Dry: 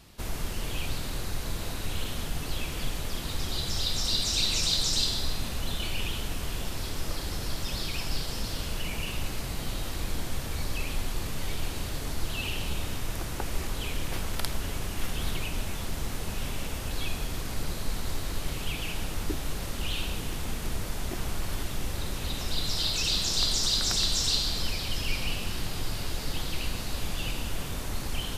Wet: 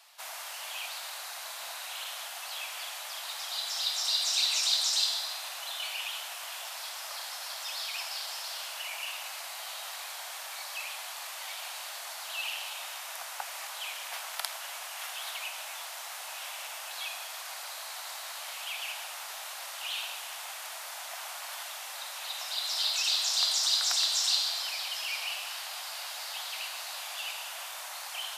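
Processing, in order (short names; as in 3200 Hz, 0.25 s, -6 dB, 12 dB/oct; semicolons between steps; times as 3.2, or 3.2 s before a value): steep high-pass 650 Hz 48 dB/oct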